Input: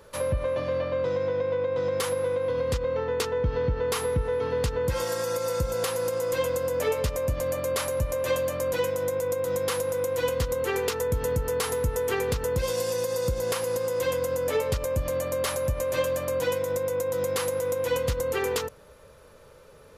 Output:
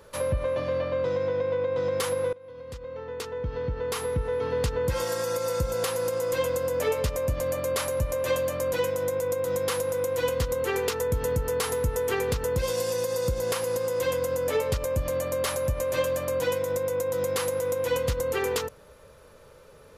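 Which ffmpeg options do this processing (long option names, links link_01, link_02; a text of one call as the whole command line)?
ffmpeg -i in.wav -filter_complex "[0:a]asplit=2[link_01][link_02];[link_01]atrim=end=2.33,asetpts=PTS-STARTPTS,afade=type=out:start_time=2.326:duration=0.004:curve=hsin:silence=0.0749894[link_03];[link_02]atrim=start=2.33,asetpts=PTS-STARTPTS,afade=type=in:duration=2.29:silence=0.0749894[link_04];[link_03][link_04]concat=n=2:v=0:a=1" out.wav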